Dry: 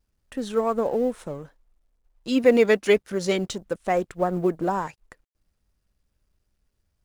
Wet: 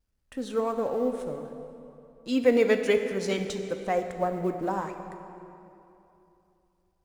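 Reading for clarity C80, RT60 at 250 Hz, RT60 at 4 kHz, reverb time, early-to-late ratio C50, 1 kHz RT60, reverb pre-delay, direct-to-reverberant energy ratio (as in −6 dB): 8.0 dB, 3.1 s, 2.1 s, 2.9 s, 7.0 dB, 2.9 s, 3 ms, 6.0 dB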